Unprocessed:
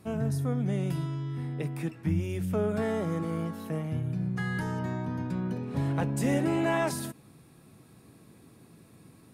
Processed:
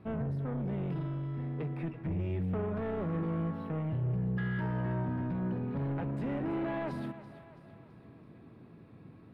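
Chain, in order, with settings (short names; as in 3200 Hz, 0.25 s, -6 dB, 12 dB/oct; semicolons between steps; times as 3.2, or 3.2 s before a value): 3.89–5.04 ripple EQ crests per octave 1.3, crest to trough 9 dB; limiter -22.5 dBFS, peak gain reduction 5 dB; soft clip -31 dBFS, distortion -12 dB; air absorption 430 m; split-band echo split 420 Hz, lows 96 ms, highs 0.331 s, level -13.5 dB; gain +1.5 dB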